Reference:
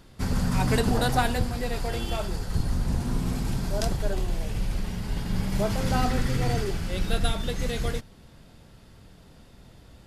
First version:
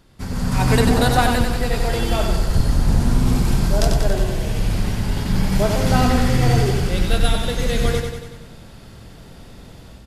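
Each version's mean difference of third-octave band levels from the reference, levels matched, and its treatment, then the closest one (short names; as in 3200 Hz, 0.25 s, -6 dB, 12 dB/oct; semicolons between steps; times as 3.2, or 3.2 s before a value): 2.5 dB: AGC gain up to 11 dB; on a send: feedback echo 94 ms, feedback 58%, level -5.5 dB; on the sum: gain -2 dB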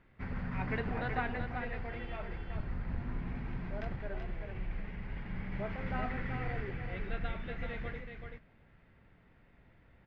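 8.0 dB: ladder low-pass 2400 Hz, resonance 55%; on a send: echo 0.381 s -6 dB; on the sum: gain -3 dB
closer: first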